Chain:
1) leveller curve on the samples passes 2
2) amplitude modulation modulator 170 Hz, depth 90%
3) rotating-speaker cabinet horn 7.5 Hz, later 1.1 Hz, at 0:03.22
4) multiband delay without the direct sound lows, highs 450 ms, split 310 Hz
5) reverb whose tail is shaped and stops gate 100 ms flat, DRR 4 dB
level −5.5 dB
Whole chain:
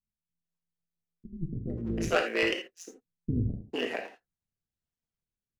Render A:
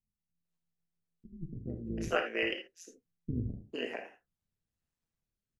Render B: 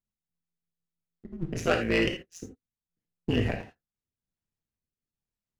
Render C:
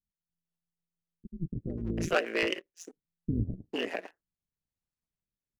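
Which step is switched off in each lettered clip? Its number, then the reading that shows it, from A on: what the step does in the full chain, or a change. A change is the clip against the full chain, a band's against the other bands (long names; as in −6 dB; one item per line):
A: 1, change in integrated loudness −5.0 LU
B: 4, echo-to-direct ratio 22.5 dB to −4.0 dB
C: 5, change in momentary loudness spread +1 LU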